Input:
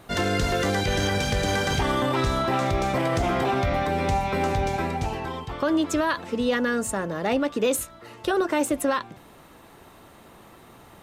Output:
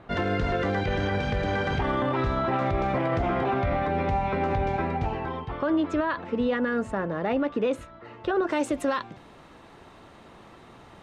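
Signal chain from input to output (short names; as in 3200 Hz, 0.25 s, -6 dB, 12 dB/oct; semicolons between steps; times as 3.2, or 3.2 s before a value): limiter -17 dBFS, peak gain reduction 3.5 dB; LPF 2300 Hz 12 dB/oct, from 8.47 s 5500 Hz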